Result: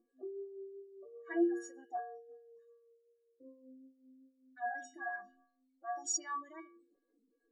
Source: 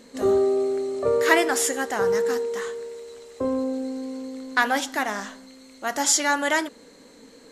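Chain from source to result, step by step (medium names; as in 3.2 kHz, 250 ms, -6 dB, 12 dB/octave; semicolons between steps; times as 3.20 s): spectral contrast enhancement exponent 2.5; inharmonic resonator 340 Hz, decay 0.69 s, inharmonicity 0.03; 4.94–6.05 s: dynamic bell 300 Hz, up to -5 dB, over -58 dBFS, Q 0.84; lamp-driven phase shifter 2.6 Hz; trim +6.5 dB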